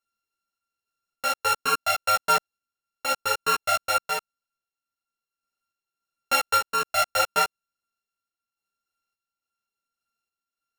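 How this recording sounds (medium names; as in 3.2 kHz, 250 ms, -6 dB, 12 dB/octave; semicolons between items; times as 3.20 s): a buzz of ramps at a fixed pitch in blocks of 32 samples; random-step tremolo; a shimmering, thickened sound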